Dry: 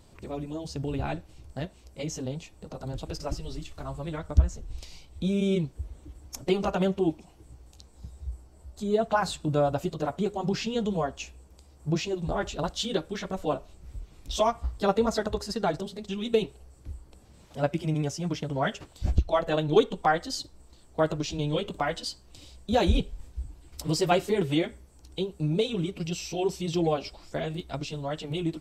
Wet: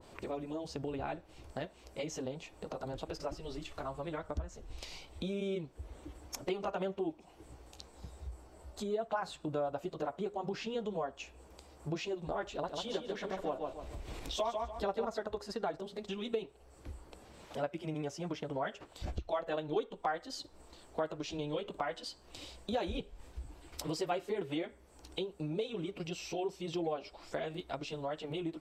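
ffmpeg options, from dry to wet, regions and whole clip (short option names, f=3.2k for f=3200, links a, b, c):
-filter_complex "[0:a]asettb=1/sr,asplit=3[a][b][c];[a]atrim=end=12.554[d];[b]atrim=start=12.55:end=15.05,asetpts=PTS-STARTPTS,afade=t=in:d=0.004:c=qsin,afade=t=out:st=2.496:d=0.004:c=qsin,equalizer=f=1.3k:t=o:w=0.26:g=-4.5,acompressor=mode=upward:threshold=-30dB:ratio=2.5:attack=3.2:release=140:knee=2.83:detection=peak,aecho=1:1:144|288|432:0.562|0.129|0.0297,atrim=end_sample=110250[e];[c]atrim=start=15.046[f];[d][e]acrossfade=d=0.004:c1=hsin:c2=qsin[g];[g][f]acrossfade=d=0.004:c1=qsin:c2=hsin,bass=f=250:g=-12,treble=f=4k:g=-7,acompressor=threshold=-46dB:ratio=2.5,adynamicequalizer=threshold=0.00126:dfrequency=1700:dqfactor=0.7:tfrequency=1700:tqfactor=0.7:attack=5:release=100:ratio=0.375:range=2:mode=cutabove:tftype=highshelf,volume=6dB"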